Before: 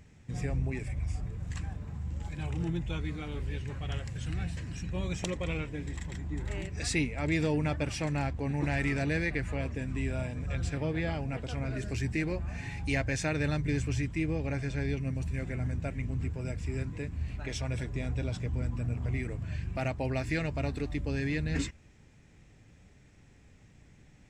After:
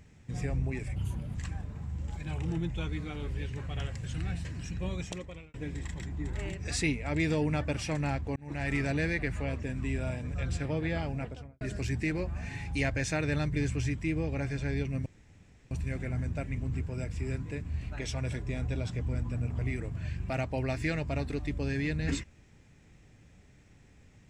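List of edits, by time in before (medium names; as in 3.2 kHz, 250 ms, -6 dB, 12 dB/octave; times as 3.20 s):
0.96–1.47 s: speed 131%
4.94–5.66 s: fade out
8.48–8.87 s: fade in
11.26–11.73 s: studio fade out
15.18 s: insert room tone 0.65 s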